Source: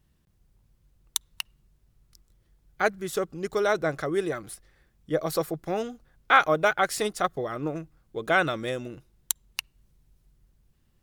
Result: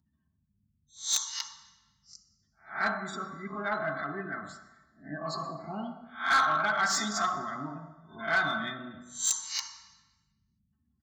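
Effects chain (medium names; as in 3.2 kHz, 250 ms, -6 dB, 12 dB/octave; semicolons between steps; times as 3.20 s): reverse spectral sustain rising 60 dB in 0.34 s; 2.92–5.58 s: peaking EQ 5.8 kHz -6.5 dB 1.1 oct; spectral gate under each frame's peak -25 dB strong; reverberation RT60 1.0 s, pre-delay 3 ms, DRR 6 dB; resampled via 16 kHz; high-pass 75 Hz 24 dB/octave; bass shelf 370 Hz -10 dB; static phaser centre 1.1 kHz, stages 4; comb 4.5 ms, depth 64%; saturation -20 dBFS, distortion -11 dB; trim +1 dB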